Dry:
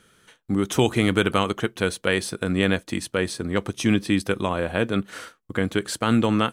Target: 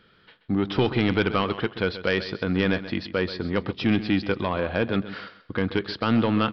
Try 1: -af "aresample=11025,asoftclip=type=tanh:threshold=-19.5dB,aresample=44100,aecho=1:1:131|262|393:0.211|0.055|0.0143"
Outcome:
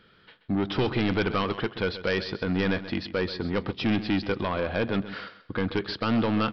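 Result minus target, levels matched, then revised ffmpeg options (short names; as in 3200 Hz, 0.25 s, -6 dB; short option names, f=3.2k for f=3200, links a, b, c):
soft clip: distortion +7 dB
-af "aresample=11025,asoftclip=type=tanh:threshold=-12.5dB,aresample=44100,aecho=1:1:131|262|393:0.211|0.055|0.0143"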